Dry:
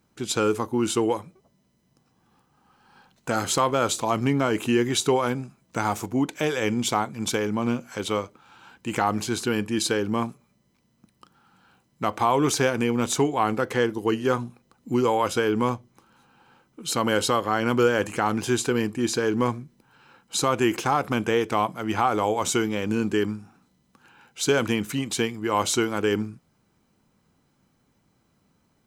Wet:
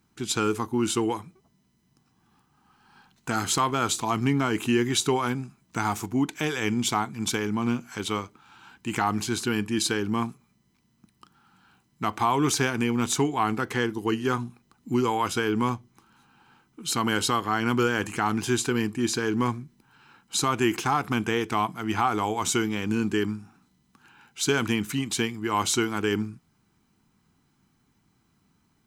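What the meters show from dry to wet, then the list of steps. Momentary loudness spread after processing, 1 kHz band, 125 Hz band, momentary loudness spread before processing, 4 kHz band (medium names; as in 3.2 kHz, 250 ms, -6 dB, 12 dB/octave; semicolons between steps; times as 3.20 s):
7 LU, -1.5 dB, 0.0 dB, 7 LU, 0.0 dB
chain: peaking EQ 550 Hz -15 dB 0.41 oct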